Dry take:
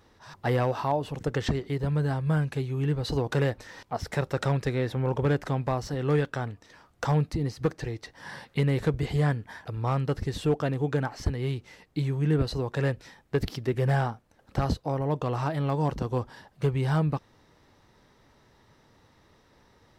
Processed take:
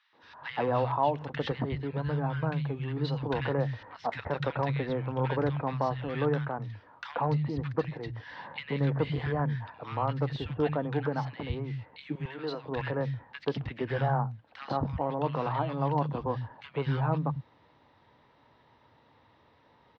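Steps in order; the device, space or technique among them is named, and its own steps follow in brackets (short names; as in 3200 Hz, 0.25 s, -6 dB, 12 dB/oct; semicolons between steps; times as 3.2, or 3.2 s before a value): guitar cabinet (speaker cabinet 100–3700 Hz, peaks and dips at 200 Hz -4 dB, 380 Hz -6 dB, 960 Hz +5 dB); 12.02–12.53 HPF 460 Hz 12 dB/oct; three bands offset in time highs, mids, lows 0.13/0.23 s, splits 160/1500 Hz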